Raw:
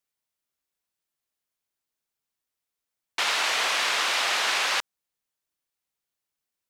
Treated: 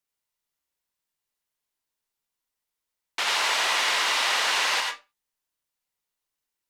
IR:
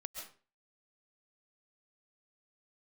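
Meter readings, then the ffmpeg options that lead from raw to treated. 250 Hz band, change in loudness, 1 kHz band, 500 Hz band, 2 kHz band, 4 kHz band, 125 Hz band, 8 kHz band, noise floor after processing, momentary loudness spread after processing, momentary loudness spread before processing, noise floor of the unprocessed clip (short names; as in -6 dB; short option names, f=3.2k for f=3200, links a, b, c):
-0.5 dB, +0.5 dB, +1.5 dB, 0.0 dB, +1.0 dB, +1.0 dB, n/a, +1.0 dB, under -85 dBFS, 9 LU, 5 LU, under -85 dBFS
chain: -filter_complex "[1:a]atrim=start_sample=2205,asetrate=66150,aresample=44100[a];[0:a][a]afir=irnorm=-1:irlink=0,volume=7dB"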